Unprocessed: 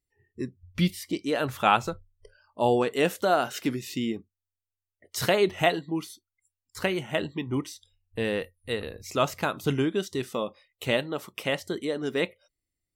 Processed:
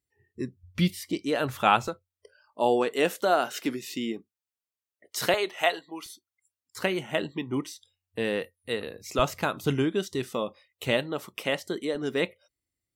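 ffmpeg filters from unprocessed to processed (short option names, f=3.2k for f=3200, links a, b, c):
-af "asetnsamples=n=441:p=0,asendcmd='1.88 highpass f 230;5.34 highpass f 580;6.06 highpass f 150;9.19 highpass f 42;11.37 highpass f 160;11.95 highpass f 53',highpass=59"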